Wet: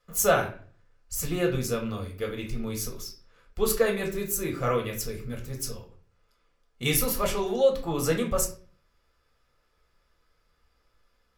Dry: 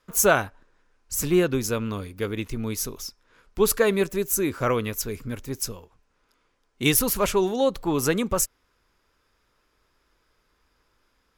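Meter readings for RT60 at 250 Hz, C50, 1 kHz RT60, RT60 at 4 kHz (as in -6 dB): 0.55 s, 10.0 dB, 0.40 s, 0.35 s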